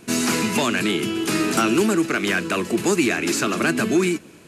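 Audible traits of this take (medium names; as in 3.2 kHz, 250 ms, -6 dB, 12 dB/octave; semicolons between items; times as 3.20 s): noise floor -46 dBFS; spectral tilt -3.5 dB/octave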